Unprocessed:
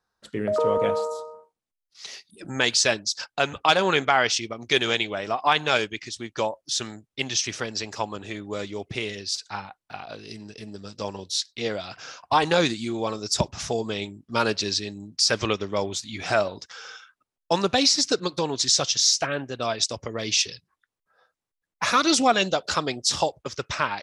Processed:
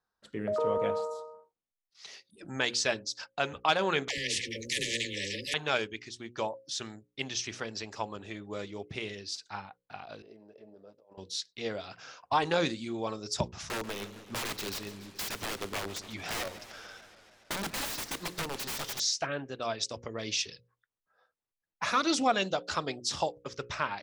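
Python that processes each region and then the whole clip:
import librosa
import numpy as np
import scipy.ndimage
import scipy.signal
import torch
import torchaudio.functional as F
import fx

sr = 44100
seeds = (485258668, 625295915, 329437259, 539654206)

y = fx.chain(x, sr, fx.brickwall_bandstop(low_hz=560.0, high_hz=1700.0),
    fx.dispersion(late='lows', ms=98.0, hz=460.0),
    fx.spectral_comp(ratio=4.0), at=(4.08, 5.54))
y = fx.chain(y, sr, fx.bandpass_q(hz=580.0, q=2.6),
    fx.over_compress(threshold_db=-48.0, ratio=-1.0), at=(10.22, 11.18))
y = fx.chain(y, sr, fx.overflow_wrap(gain_db=21.5),
    fx.transient(attack_db=3, sustain_db=-4),
    fx.echo_warbled(ms=143, feedback_pct=75, rate_hz=2.8, cents=198, wet_db=-15.0), at=(13.6, 19.0))
y = fx.high_shelf(y, sr, hz=4900.0, db=-6.0)
y = fx.hum_notches(y, sr, base_hz=60, count=9)
y = y * 10.0 ** (-6.5 / 20.0)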